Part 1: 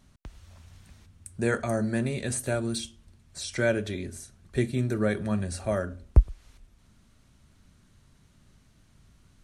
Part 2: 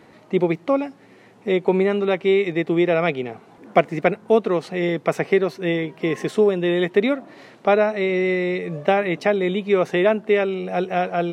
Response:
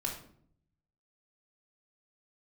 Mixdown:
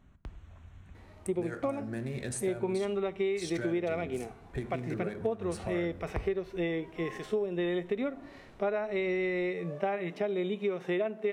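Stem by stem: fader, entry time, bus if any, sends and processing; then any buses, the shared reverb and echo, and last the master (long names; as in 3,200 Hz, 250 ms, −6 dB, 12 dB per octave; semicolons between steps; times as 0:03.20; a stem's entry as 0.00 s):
−3.0 dB, 0.00 s, send −9 dB, adaptive Wiener filter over 9 samples; downward compressor 6 to 1, threshold −32 dBFS, peak gain reduction 20.5 dB
−3.0 dB, 0.95 s, send −18.5 dB, high-shelf EQ 2,300 Hz −8 dB; harmonic and percussive parts rebalanced percussive −14 dB; spectral tilt +2 dB per octave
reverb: on, RT60 0.60 s, pre-delay 3 ms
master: downward compressor 6 to 1, threshold −28 dBFS, peak gain reduction 12.5 dB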